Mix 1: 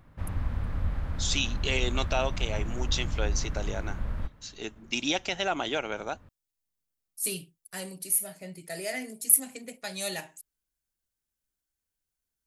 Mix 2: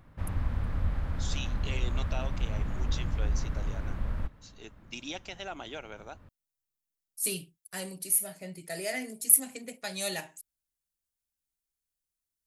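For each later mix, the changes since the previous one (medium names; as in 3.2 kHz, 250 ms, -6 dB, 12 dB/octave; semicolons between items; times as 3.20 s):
first voice -11.0 dB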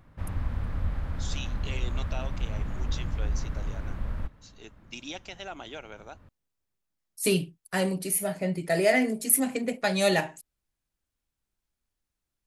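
second voice: remove pre-emphasis filter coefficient 0.8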